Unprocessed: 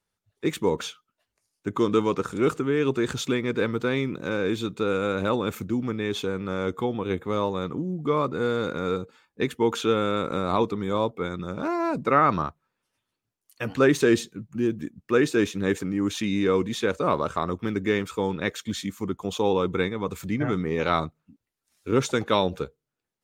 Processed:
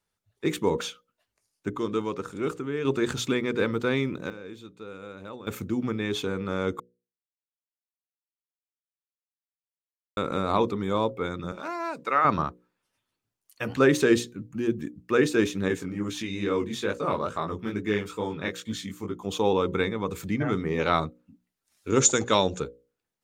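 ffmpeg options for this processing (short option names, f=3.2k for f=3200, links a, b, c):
-filter_complex "[0:a]asettb=1/sr,asplit=3[a][b][c];[a]atrim=end=11.524[d];[b]atrim=start=11.52:end=12.25,asetpts=PTS-STARTPTS,afade=t=in:d=0.004:c=qsin,afade=t=out:st=0.726:d=0.004:c=qsin,highpass=f=1.1k:p=1[e];[c]atrim=start=12.246[f];[d][e]acrossfade=d=0.004:c1=hsin:c2=qsin[g];[g][f]acrossfade=d=0.004:c1=qsin:c2=hsin,asettb=1/sr,asplit=3[h][i][j];[h]atrim=end=15.684[k];[i]atrim=start=15.68:end=19.29,asetpts=PTS-STARTPTS,afade=t=in:d=0.004:c=qsin,afade=t=out:st=3.606:d=0.004:c=qsin,flanger=delay=17.5:depth=5.3:speed=2.3[l];[j]atrim=start=19.286[m];[k][l]acrossfade=d=0.004:c1=hsin:c2=qsin[n];[n][m]acrossfade=d=0.004:c1=qsin:c2=hsin,asettb=1/sr,asplit=3[o][p][q];[o]atrim=end=21.904[r];[p]atrim=start=21.9:end=22.6,asetpts=PTS-STARTPTS,afade=t=in:d=0.004:c=qsin,afade=t=out:st=0.696:d=0.004:c=qsin,lowpass=f=7k:t=q:w=10[s];[q]atrim=start=22.596[t];[r][s]acrossfade=d=0.004:c1=hsin:c2=qsin[u];[u][t]acrossfade=d=0.004:c1=qsin:c2=hsin,asplit=7[v][w][x][y][z][aa][ab];[v]atrim=end=1.702[ac];[w]atrim=start=1.698:end=2.852,asetpts=PTS-STARTPTS,volume=-6dB[ad];[x]atrim=start=2.848:end=4.3,asetpts=PTS-STARTPTS,afade=t=out:st=1.142:d=0.31:c=log:silence=0.16788[ae];[y]atrim=start=4.3:end=5.47,asetpts=PTS-STARTPTS,volume=-15.5dB[af];[z]atrim=start=5.47:end=6.8,asetpts=PTS-STARTPTS,afade=t=in:d=0.31:c=log:silence=0.16788,afade=t=out:st=1.326:d=0.004:c=hsin[ag];[aa]atrim=start=6.8:end=10.17,asetpts=PTS-STARTPTS,volume=0[ah];[ab]atrim=start=10.17,asetpts=PTS-STARTPTS,afade=t=in:d=0.004:c=hsin[ai];[ac][ad]acrossfade=d=0.004:c1=hsin:c2=hsin[aj];[ae][af][ag][ah][ai]concat=n=5:v=0:a=1[ak];[aj][ak]acrossfade=d=0.004:c1=hsin:c2=hsin,bandreject=f=60:t=h:w=6,bandreject=f=120:t=h:w=6,bandreject=f=180:t=h:w=6,bandreject=f=240:t=h:w=6,bandreject=f=300:t=h:w=6,bandreject=f=360:t=h:w=6,bandreject=f=420:t=h:w=6,bandreject=f=480:t=h:w=6,bandreject=f=540:t=h:w=6"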